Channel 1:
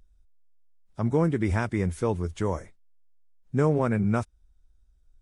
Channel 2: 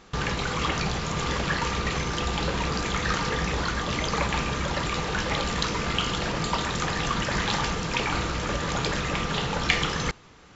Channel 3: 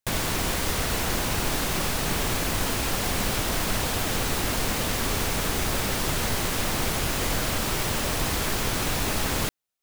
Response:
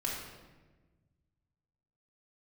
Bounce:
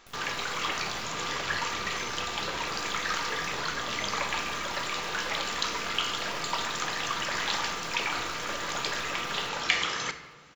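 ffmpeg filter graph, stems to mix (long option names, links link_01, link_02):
-filter_complex "[0:a]volume=-14dB[link_01];[1:a]highpass=frequency=890:poles=1,volume=-3.5dB,asplit=2[link_02][link_03];[link_03]volume=-9dB[link_04];[2:a]alimiter=limit=-23.5dB:level=0:latency=1,acrusher=bits=4:dc=4:mix=0:aa=0.000001,volume=-14.5dB,asplit=3[link_05][link_06][link_07];[link_06]volume=-15dB[link_08];[link_07]volume=-9dB[link_09];[link_01][link_05]amix=inputs=2:normalize=0,acompressor=threshold=-52dB:ratio=2,volume=0dB[link_10];[3:a]atrim=start_sample=2205[link_11];[link_04][link_08]amix=inputs=2:normalize=0[link_12];[link_12][link_11]afir=irnorm=-1:irlink=0[link_13];[link_09]aecho=0:1:285|570|855|1140|1425|1710:1|0.44|0.194|0.0852|0.0375|0.0165[link_14];[link_02][link_10][link_13][link_14]amix=inputs=4:normalize=0"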